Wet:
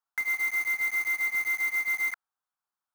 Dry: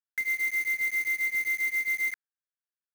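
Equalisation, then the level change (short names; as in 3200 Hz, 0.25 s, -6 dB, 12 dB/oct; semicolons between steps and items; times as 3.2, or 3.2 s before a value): band shelf 1000 Hz +14 dB 1.2 oct; 0.0 dB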